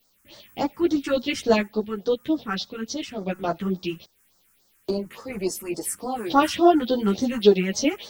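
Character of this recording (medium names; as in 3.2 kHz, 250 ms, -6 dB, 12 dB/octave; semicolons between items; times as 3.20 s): a quantiser's noise floor 10-bit, dither triangular; phasing stages 4, 3.5 Hz, lowest notch 600–2600 Hz; random-step tremolo 1.2 Hz; a shimmering, thickened sound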